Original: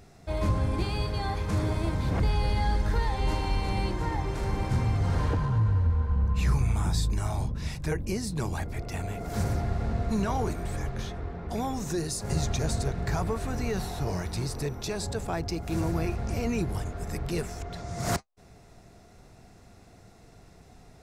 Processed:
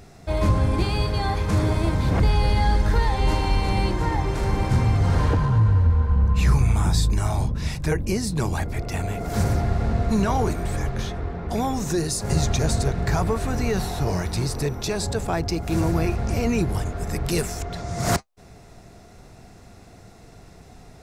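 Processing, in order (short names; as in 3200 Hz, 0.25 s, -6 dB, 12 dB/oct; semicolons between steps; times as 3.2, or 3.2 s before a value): 17.24–17.64 high shelf 3800 Hz -> 6700 Hz +8.5 dB; gain +6.5 dB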